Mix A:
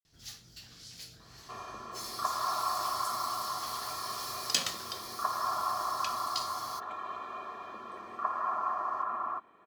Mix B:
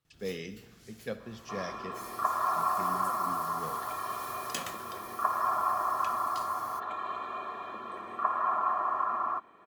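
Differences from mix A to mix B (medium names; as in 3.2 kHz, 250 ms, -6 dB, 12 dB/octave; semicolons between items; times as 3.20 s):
speech: unmuted; first sound: add peaking EQ 4.7 kHz -14.5 dB 1.2 oct; second sound +3.5 dB; reverb: on, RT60 1.0 s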